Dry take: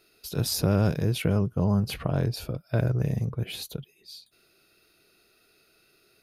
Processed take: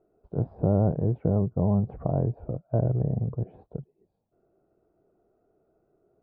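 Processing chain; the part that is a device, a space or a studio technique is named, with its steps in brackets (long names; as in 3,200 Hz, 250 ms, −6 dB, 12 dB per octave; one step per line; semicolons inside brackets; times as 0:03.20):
under water (low-pass filter 870 Hz 24 dB per octave; parametric band 710 Hz +4.5 dB 0.55 octaves)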